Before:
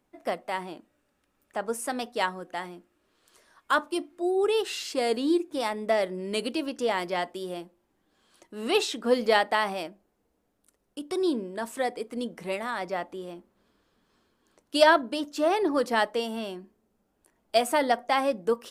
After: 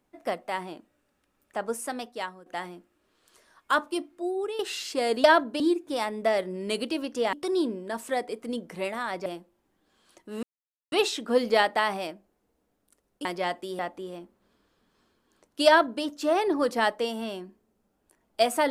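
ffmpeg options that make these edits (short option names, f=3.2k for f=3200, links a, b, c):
-filter_complex "[0:a]asplit=10[a][b][c][d][e][f][g][h][i][j];[a]atrim=end=2.46,asetpts=PTS-STARTPTS,afade=t=out:st=1.68:d=0.78:silence=0.223872[k];[b]atrim=start=2.46:end=4.59,asetpts=PTS-STARTPTS,afade=t=in:d=0.004:c=hsin:silence=0.223872,afade=t=out:st=1.32:d=0.81:c=qsin:silence=0.251189[l];[c]atrim=start=4.59:end=5.242,asetpts=PTS-STARTPTS,afade=t=in:d=0.004:c=hsin:silence=0.251189[m];[d]atrim=start=14.818:end=15.182[n];[e]atrim=start=5.238:end=6.972[o];[f]atrim=start=11.008:end=12.942[p];[g]atrim=start=7.508:end=8.68,asetpts=PTS-STARTPTS,afade=t=out:st=1.168:d=0.004:c=hsin,apad=pad_dur=0.49[q];[h]atrim=start=8.68:end=11.012,asetpts=PTS-STARTPTS,afade=t=in:d=0.004:c=hsin[r];[i]atrim=start=6.968:end=7.512[s];[j]atrim=start=12.938[t];[k][l][m]concat=n=3:v=0:a=1[u];[u][n]acrossfade=d=0.004:c1=hsin:c2=hsin[v];[v][o]acrossfade=d=0.004:c1=hsin:c2=hsin[w];[w][p]acrossfade=d=0.004:c1=hsin:c2=hsin[x];[q][r]concat=n=2:v=0:a=1[y];[x][y]acrossfade=d=0.004:c1=hsin:c2=hsin[z];[z][s]acrossfade=d=0.004:c1=hsin:c2=hsin[aa];[aa][t]acrossfade=d=0.004:c1=hsin:c2=hsin"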